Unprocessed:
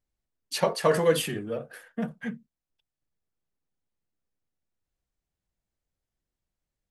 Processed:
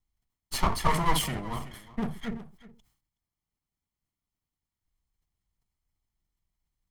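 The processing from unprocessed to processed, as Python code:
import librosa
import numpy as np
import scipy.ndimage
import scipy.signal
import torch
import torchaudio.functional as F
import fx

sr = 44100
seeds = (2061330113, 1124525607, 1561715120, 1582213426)

p1 = fx.lower_of_two(x, sr, delay_ms=0.96)
p2 = fx.low_shelf(p1, sr, hz=71.0, db=7.5)
p3 = p2 + fx.echo_single(p2, sr, ms=372, db=-18.0, dry=0)
y = fx.sustainer(p3, sr, db_per_s=100.0)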